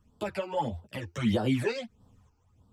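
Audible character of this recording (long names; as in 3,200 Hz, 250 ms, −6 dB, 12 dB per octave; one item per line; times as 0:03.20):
phaser sweep stages 12, 1.6 Hz, lowest notch 180–2,300 Hz
sample-and-hold tremolo
a shimmering, thickened sound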